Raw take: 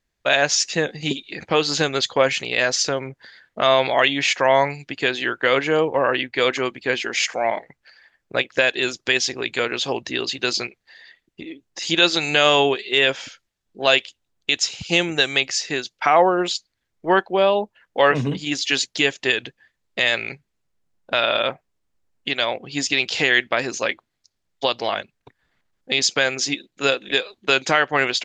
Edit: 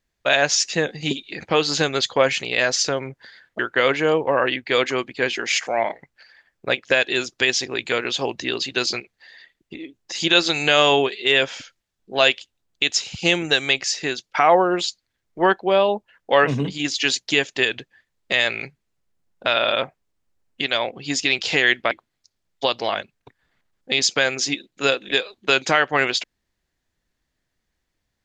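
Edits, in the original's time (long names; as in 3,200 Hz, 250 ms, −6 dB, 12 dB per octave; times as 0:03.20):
0:03.59–0:05.26: remove
0:23.58–0:23.91: remove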